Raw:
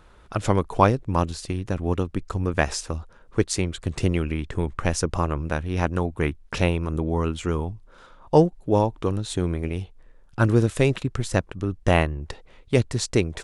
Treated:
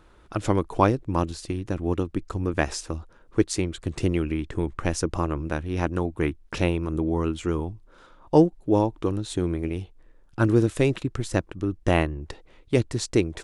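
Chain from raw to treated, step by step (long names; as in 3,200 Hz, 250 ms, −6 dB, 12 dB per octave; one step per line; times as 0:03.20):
parametric band 320 Hz +7.5 dB 0.4 octaves
level −3 dB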